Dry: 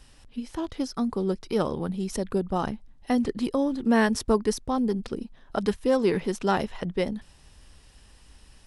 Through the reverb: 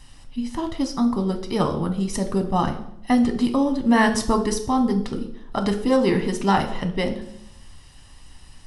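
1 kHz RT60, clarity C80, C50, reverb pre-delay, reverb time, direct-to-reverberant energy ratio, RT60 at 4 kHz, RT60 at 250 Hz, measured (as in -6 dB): 0.65 s, 14.0 dB, 11.0 dB, 7 ms, 0.75 s, 4.5 dB, 0.60 s, 0.90 s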